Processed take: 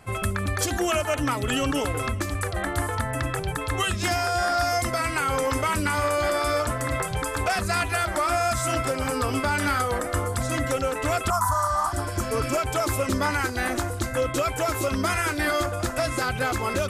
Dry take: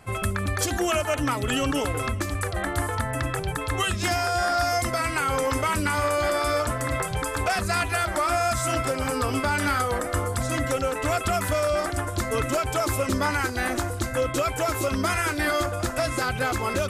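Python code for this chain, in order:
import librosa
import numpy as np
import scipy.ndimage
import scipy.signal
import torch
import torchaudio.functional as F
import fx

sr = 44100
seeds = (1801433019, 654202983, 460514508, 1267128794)

y = fx.curve_eq(x, sr, hz=(120.0, 470.0, 1000.0, 2500.0, 5800.0), db=(0, -21, 15, -22, 2), at=(11.3, 11.93))
y = fx.spec_repair(y, sr, seeds[0], start_s=11.55, length_s=1.0, low_hz=1400.0, high_hz=5500.0, source='both')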